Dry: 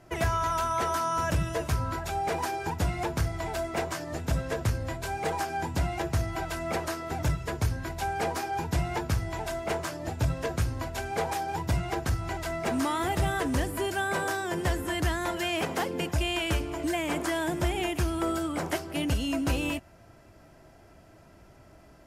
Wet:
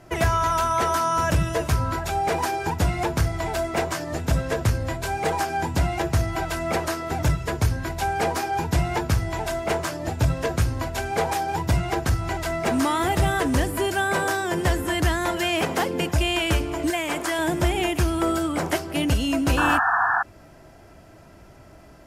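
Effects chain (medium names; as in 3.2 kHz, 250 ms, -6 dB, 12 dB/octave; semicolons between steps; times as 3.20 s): 16.90–17.39 s: bass shelf 380 Hz -9 dB; 19.57–20.23 s: painted sound noise 680–1800 Hz -27 dBFS; trim +6 dB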